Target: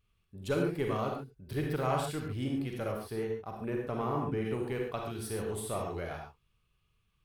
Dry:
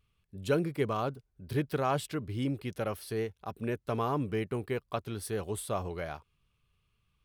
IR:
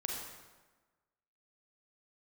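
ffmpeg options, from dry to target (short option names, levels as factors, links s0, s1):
-filter_complex "[0:a]asplit=2[s0][s1];[s1]aeval=exprs='clip(val(0),-1,0.01)':c=same,volume=0.316[s2];[s0][s2]amix=inputs=2:normalize=0[s3];[1:a]atrim=start_sample=2205,atrim=end_sample=6615[s4];[s3][s4]afir=irnorm=-1:irlink=0,asplit=3[s5][s6][s7];[s5]afade=t=out:st=2.91:d=0.02[s8];[s6]adynamicequalizer=threshold=0.00355:dfrequency=2200:dqfactor=0.7:tfrequency=2200:tqfactor=0.7:attack=5:release=100:ratio=0.375:range=4:mode=cutabove:tftype=highshelf,afade=t=in:st=2.91:d=0.02,afade=t=out:st=4.44:d=0.02[s9];[s7]afade=t=in:st=4.44:d=0.02[s10];[s8][s9][s10]amix=inputs=3:normalize=0,volume=0.668"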